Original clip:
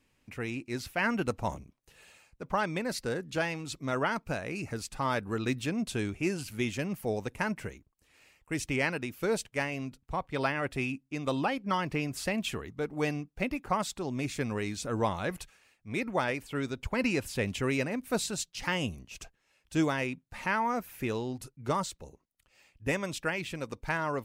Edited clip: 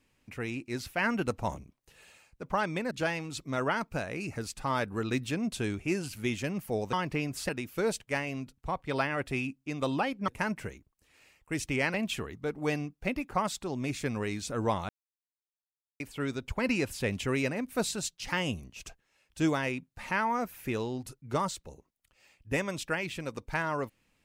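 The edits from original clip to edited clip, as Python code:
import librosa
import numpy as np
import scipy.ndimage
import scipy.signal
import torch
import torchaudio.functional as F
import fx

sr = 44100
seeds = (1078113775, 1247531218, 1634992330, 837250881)

y = fx.edit(x, sr, fx.cut(start_s=2.91, length_s=0.35),
    fx.swap(start_s=7.28, length_s=1.66, other_s=11.73, other_length_s=0.56),
    fx.silence(start_s=15.24, length_s=1.11), tone=tone)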